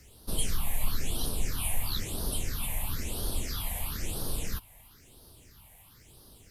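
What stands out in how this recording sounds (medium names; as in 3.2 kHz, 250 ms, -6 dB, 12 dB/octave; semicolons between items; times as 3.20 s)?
phasing stages 6, 1 Hz, lowest notch 350–2200 Hz; a quantiser's noise floor 12-bit, dither triangular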